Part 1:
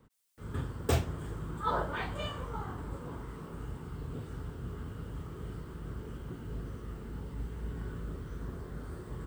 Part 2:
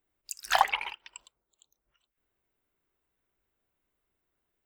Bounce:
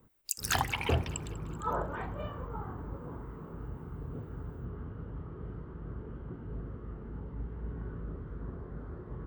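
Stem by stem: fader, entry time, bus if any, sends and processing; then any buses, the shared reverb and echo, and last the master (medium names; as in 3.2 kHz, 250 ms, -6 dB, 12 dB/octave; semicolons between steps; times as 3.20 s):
-0.5 dB, 0.00 s, no send, no echo send, low-pass 1.4 kHz 12 dB/octave
+2.5 dB, 0.00 s, no send, echo send -17 dB, treble shelf 7.1 kHz +9 dB; compression 5:1, threshold -30 dBFS, peak gain reduction 13.5 dB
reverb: none
echo: feedback delay 196 ms, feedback 52%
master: none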